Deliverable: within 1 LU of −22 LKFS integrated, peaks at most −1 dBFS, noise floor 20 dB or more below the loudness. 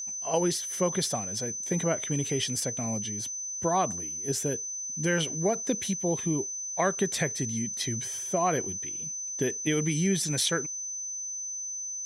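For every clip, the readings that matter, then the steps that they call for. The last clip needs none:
interfering tone 6,100 Hz; level of the tone −33 dBFS; integrated loudness −29.0 LKFS; sample peak −12.5 dBFS; target loudness −22.0 LKFS
→ notch filter 6,100 Hz, Q 30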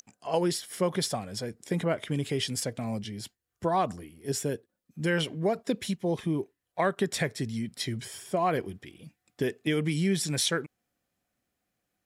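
interfering tone none found; integrated loudness −30.5 LKFS; sample peak −13.0 dBFS; target loudness −22.0 LKFS
→ level +8.5 dB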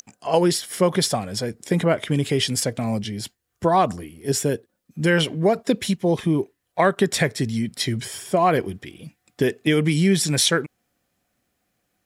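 integrated loudness −22.0 LKFS; sample peak −4.5 dBFS; background noise floor −74 dBFS

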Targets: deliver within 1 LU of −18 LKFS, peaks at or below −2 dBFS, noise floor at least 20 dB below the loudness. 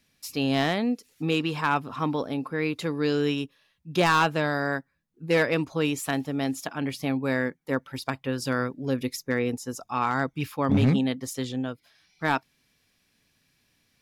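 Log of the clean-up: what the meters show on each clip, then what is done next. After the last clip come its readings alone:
share of clipped samples 0.3%; peaks flattened at −14.5 dBFS; integrated loudness −27.0 LKFS; sample peak −14.5 dBFS; target loudness −18.0 LKFS
→ clipped peaks rebuilt −14.5 dBFS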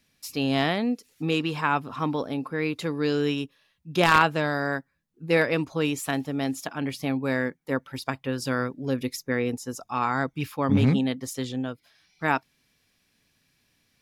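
share of clipped samples 0.0%; integrated loudness −26.5 LKFS; sample peak −5.5 dBFS; target loudness −18.0 LKFS
→ level +8.5 dB
brickwall limiter −2 dBFS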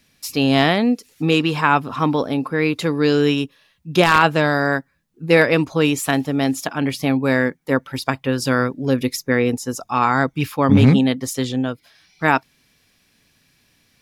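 integrated loudness −18.5 LKFS; sample peak −2.0 dBFS; background noise floor −62 dBFS

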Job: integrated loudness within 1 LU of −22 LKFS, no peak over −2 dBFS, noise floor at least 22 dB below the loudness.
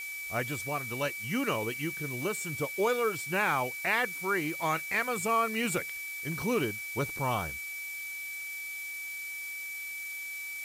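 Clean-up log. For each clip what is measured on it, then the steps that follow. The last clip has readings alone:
interfering tone 2,300 Hz; level of the tone −37 dBFS; background noise floor −39 dBFS; target noise floor −54 dBFS; integrated loudness −32.0 LKFS; sample peak −15.5 dBFS; target loudness −22.0 LKFS
→ notch filter 2,300 Hz, Q 30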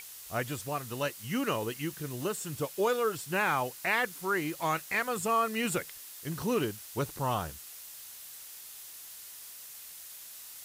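interfering tone none found; background noise floor −47 dBFS; target noise floor −54 dBFS
→ noise reduction from a noise print 7 dB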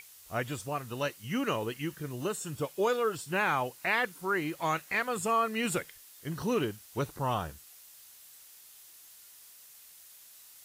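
background noise floor −54 dBFS; integrated loudness −32.0 LKFS; sample peak −16.0 dBFS; target loudness −22.0 LKFS
→ level +10 dB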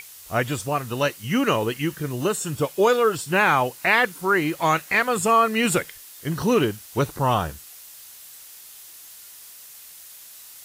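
integrated loudness −22.0 LKFS; sample peak −6.0 dBFS; background noise floor −44 dBFS

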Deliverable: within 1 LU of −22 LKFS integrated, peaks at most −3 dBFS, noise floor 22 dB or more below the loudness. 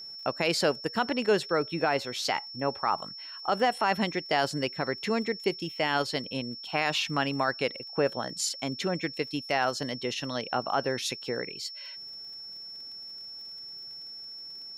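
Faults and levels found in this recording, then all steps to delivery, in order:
crackle rate 24 per second; interfering tone 5,400 Hz; level of the tone −40 dBFS; integrated loudness −30.0 LKFS; sample peak −14.0 dBFS; target loudness −22.0 LKFS
→ click removal
notch filter 5,400 Hz, Q 30
level +8 dB

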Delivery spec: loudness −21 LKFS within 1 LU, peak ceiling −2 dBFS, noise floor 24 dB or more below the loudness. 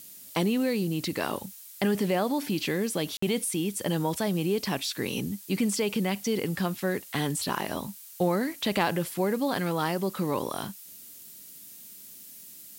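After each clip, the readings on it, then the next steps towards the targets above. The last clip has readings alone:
number of dropouts 1; longest dropout 54 ms; background noise floor −47 dBFS; target noise floor −53 dBFS; integrated loudness −29.0 LKFS; sample peak −12.5 dBFS; target loudness −21.0 LKFS
→ repair the gap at 0:03.17, 54 ms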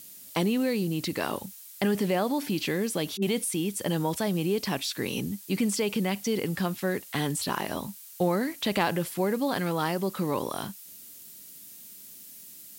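number of dropouts 0; background noise floor −47 dBFS; target noise floor −53 dBFS
→ broadband denoise 6 dB, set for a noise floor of −47 dBFS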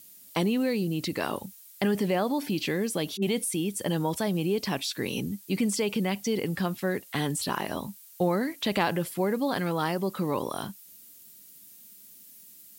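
background noise floor −52 dBFS; target noise floor −53 dBFS
→ broadband denoise 6 dB, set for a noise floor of −52 dBFS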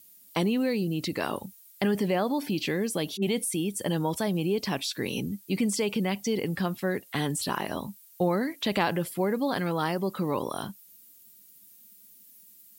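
background noise floor −55 dBFS; integrated loudness −29.0 LKFS; sample peak −12.0 dBFS; target loudness −21.0 LKFS
→ level +8 dB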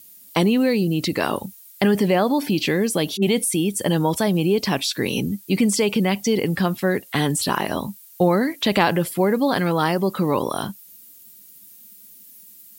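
integrated loudness −21.0 LKFS; sample peak −4.0 dBFS; background noise floor −47 dBFS

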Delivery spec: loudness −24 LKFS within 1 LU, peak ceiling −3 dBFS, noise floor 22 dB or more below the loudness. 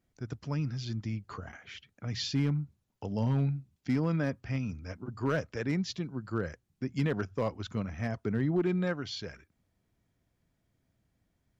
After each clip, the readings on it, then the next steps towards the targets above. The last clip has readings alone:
share of clipped samples 0.4%; peaks flattened at −21.5 dBFS; integrated loudness −33.5 LKFS; sample peak −21.5 dBFS; target loudness −24.0 LKFS
→ clipped peaks rebuilt −21.5 dBFS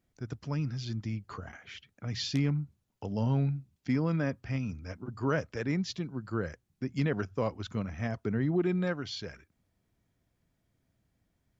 share of clipped samples 0.0%; integrated loudness −33.0 LKFS; sample peak −15.5 dBFS; target loudness −24.0 LKFS
→ level +9 dB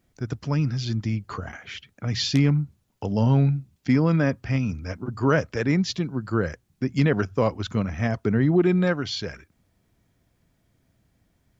integrated loudness −24.0 LKFS; sample peak −6.5 dBFS; background noise floor −69 dBFS

